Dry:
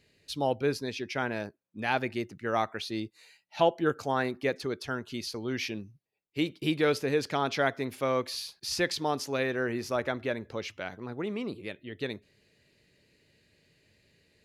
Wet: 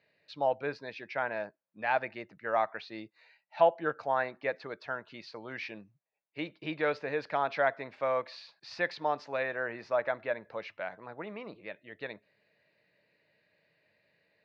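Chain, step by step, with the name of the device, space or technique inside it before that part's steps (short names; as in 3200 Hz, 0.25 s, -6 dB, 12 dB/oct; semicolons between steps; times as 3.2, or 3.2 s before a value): kitchen radio (speaker cabinet 220–3700 Hz, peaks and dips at 250 Hz -10 dB, 380 Hz -10 dB, 630 Hz +6 dB, 940 Hz +4 dB, 1700 Hz +3 dB, 3200 Hz -9 dB); gain -2.5 dB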